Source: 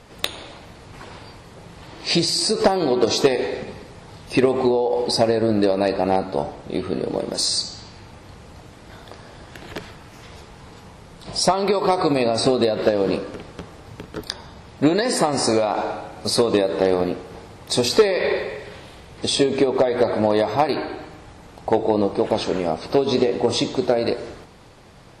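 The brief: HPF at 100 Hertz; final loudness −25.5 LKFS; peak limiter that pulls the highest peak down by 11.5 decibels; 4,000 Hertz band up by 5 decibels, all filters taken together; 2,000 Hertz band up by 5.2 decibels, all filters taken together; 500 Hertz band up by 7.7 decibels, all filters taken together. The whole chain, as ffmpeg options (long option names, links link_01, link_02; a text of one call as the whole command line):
ffmpeg -i in.wav -af "highpass=100,equalizer=frequency=500:width_type=o:gain=9,equalizer=frequency=2000:width_type=o:gain=4.5,equalizer=frequency=4000:width_type=o:gain=5,volume=-7.5dB,alimiter=limit=-15dB:level=0:latency=1" out.wav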